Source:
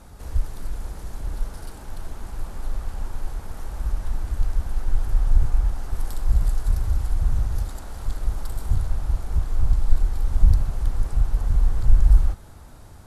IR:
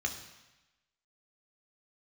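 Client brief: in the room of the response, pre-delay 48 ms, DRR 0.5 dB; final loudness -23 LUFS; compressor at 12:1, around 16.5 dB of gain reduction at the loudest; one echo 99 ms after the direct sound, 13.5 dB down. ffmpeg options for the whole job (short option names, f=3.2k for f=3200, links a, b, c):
-filter_complex "[0:a]acompressor=threshold=-24dB:ratio=12,aecho=1:1:99:0.211,asplit=2[a][b];[1:a]atrim=start_sample=2205,adelay=48[c];[b][c]afir=irnorm=-1:irlink=0,volume=-4.5dB[d];[a][d]amix=inputs=2:normalize=0,volume=11dB"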